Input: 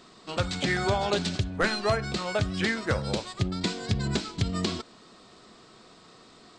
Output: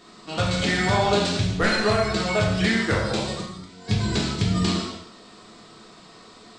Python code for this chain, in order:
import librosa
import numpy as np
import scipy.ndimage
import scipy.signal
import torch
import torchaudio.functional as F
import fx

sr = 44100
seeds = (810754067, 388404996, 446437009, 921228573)

y = fx.auto_swell(x, sr, attack_ms=722.0, at=(3.33, 3.88))
y = fx.rev_gated(y, sr, seeds[0], gate_ms=320, shape='falling', drr_db=-4.5)